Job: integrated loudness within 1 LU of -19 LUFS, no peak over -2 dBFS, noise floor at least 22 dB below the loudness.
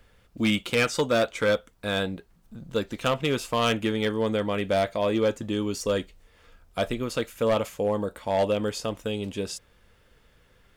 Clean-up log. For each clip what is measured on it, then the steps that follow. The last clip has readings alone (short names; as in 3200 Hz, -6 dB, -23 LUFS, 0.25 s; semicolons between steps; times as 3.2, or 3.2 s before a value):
clipped 0.8%; flat tops at -17.0 dBFS; loudness -27.0 LUFS; peak -17.0 dBFS; loudness target -19.0 LUFS
-> clip repair -17 dBFS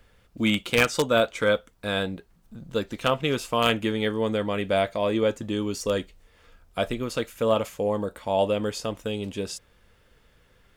clipped 0.0%; loudness -26.0 LUFS; peak -8.0 dBFS; loudness target -19.0 LUFS
-> gain +7 dB; limiter -2 dBFS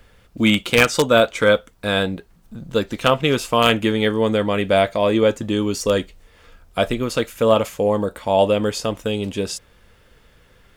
loudness -19.0 LUFS; peak -2.0 dBFS; noise floor -54 dBFS